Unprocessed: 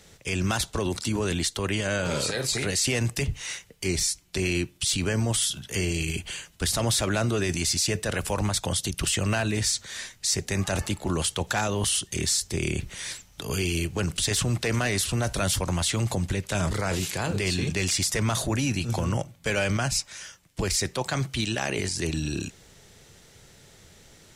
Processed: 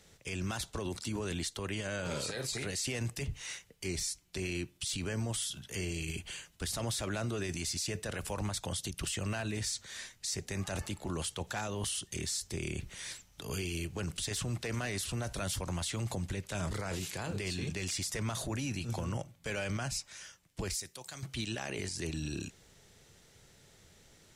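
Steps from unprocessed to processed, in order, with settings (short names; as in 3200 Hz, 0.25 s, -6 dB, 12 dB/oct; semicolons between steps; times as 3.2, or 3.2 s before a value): 20.74–21.23 pre-emphasis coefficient 0.8; limiter -19.5 dBFS, peak gain reduction 5 dB; gain -8 dB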